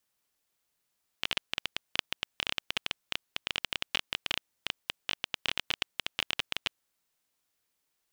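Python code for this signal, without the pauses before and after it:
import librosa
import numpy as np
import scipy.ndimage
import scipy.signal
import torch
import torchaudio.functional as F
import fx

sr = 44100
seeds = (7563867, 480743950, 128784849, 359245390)

y = fx.geiger_clicks(sr, seeds[0], length_s=5.76, per_s=14.0, level_db=-11.0)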